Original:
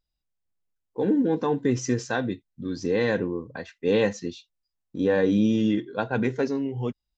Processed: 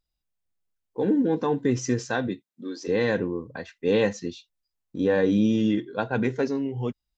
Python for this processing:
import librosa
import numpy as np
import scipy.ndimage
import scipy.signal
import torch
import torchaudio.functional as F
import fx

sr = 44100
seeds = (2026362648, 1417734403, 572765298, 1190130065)

y = fx.highpass(x, sr, hz=fx.line((2.27, 110.0), (2.87, 410.0)), slope=24, at=(2.27, 2.87), fade=0.02)